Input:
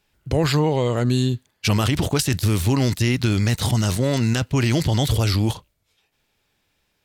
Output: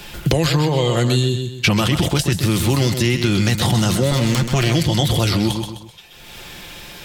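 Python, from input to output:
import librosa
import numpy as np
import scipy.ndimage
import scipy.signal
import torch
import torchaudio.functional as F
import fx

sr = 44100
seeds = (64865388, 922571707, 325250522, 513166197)

p1 = fx.lower_of_two(x, sr, delay_ms=0.9, at=(4.11, 4.75))
p2 = fx.level_steps(p1, sr, step_db=13)
p3 = p1 + (p2 * 10.0 ** (-1.5 / 20.0))
p4 = fx.peak_eq(p3, sr, hz=3300.0, db=3.5, octaves=0.42)
p5 = p4 + 0.41 * np.pad(p4, (int(5.7 * sr / 1000.0), 0))[:len(p4)]
p6 = p5 + fx.echo_feedback(p5, sr, ms=128, feedback_pct=24, wet_db=-9, dry=0)
p7 = fx.band_squash(p6, sr, depth_pct=100)
y = p7 * 10.0 ** (-1.0 / 20.0)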